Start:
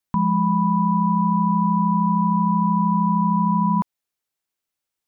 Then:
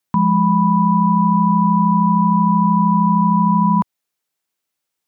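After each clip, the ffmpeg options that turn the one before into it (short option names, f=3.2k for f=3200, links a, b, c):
-af "highpass=100,volume=5dB"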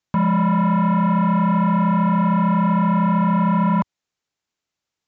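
-af "lowshelf=f=120:g=12,aresample=16000,asoftclip=type=tanh:threshold=-12dB,aresample=44100,volume=-1.5dB"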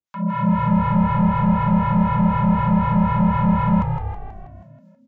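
-filter_complex "[0:a]acrossover=split=760[a][b];[a]aeval=exprs='val(0)*(1-1/2+1/2*cos(2*PI*4*n/s))':c=same[c];[b]aeval=exprs='val(0)*(1-1/2-1/2*cos(2*PI*4*n/s))':c=same[d];[c][d]amix=inputs=2:normalize=0,dynaudnorm=f=200:g=3:m=9dB,asplit=2[e][f];[f]asplit=8[g][h][i][j][k][l][m][n];[g]adelay=161,afreqshift=-54,volume=-6.5dB[o];[h]adelay=322,afreqshift=-108,volume=-10.9dB[p];[i]adelay=483,afreqshift=-162,volume=-15.4dB[q];[j]adelay=644,afreqshift=-216,volume=-19.8dB[r];[k]adelay=805,afreqshift=-270,volume=-24.2dB[s];[l]adelay=966,afreqshift=-324,volume=-28.7dB[t];[m]adelay=1127,afreqshift=-378,volume=-33.1dB[u];[n]adelay=1288,afreqshift=-432,volume=-37.6dB[v];[o][p][q][r][s][t][u][v]amix=inputs=8:normalize=0[w];[e][w]amix=inputs=2:normalize=0,volume=-5.5dB"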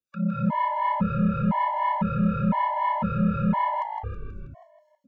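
-filter_complex "[0:a]acrossover=split=210[a][b];[a]acompressor=threshold=-29dB:ratio=6[c];[c][b]amix=inputs=2:normalize=0,afftfilt=real='re*gt(sin(2*PI*0.99*pts/sr)*(1-2*mod(floor(b*sr/1024/570),2)),0)':imag='im*gt(sin(2*PI*0.99*pts/sr)*(1-2*mod(floor(b*sr/1024/570),2)),0)':win_size=1024:overlap=0.75"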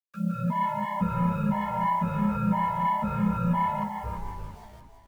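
-filter_complex "[0:a]acrusher=bits=8:mix=0:aa=0.000001,asplit=2[a][b];[b]aecho=0:1:338|676|1014|1352:0.376|0.135|0.0487|0.0175[c];[a][c]amix=inputs=2:normalize=0,asplit=2[d][e];[e]adelay=11,afreqshift=-1.3[f];[d][f]amix=inputs=2:normalize=1"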